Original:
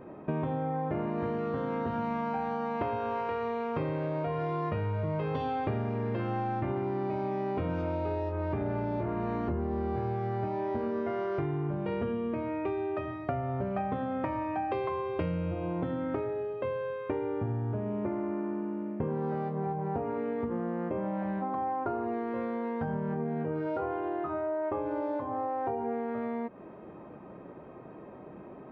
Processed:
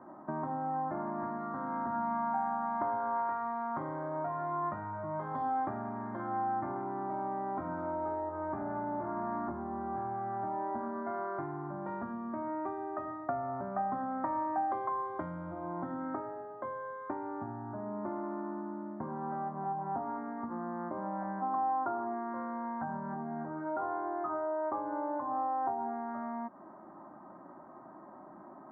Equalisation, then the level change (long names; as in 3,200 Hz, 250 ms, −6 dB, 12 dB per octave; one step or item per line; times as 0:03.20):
three-way crossover with the lows and the highs turned down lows −20 dB, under 250 Hz, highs −23 dB, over 2,100 Hz
parametric band 370 Hz +3.5 dB 2.7 octaves
phaser with its sweep stopped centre 1,100 Hz, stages 4
+1.5 dB